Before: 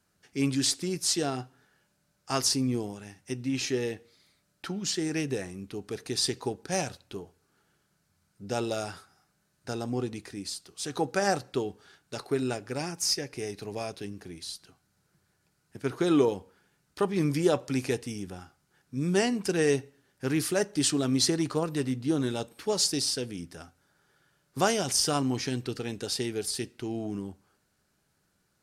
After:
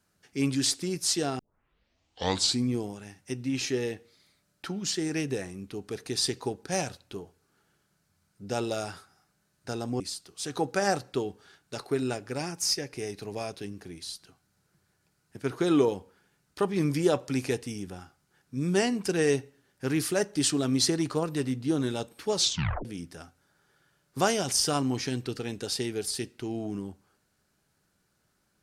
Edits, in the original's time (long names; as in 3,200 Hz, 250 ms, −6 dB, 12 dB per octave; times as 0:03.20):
0:01.39: tape start 1.30 s
0:10.00–0:10.40: remove
0:22.76: tape stop 0.49 s